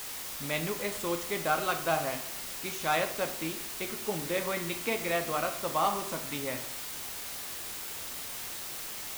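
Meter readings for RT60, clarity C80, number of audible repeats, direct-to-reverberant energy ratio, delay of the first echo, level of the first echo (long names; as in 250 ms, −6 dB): 0.70 s, 13.5 dB, no echo audible, 5.0 dB, no echo audible, no echo audible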